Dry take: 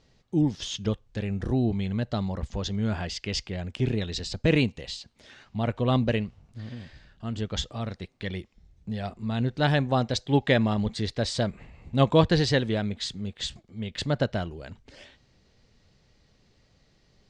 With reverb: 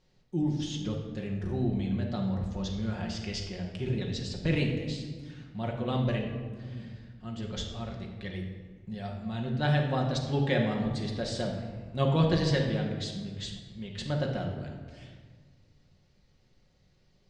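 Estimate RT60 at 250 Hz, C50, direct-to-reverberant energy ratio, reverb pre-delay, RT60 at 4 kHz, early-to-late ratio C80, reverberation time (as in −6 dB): 2.1 s, 4.5 dB, −0.5 dB, 5 ms, 0.95 s, 6.5 dB, 1.6 s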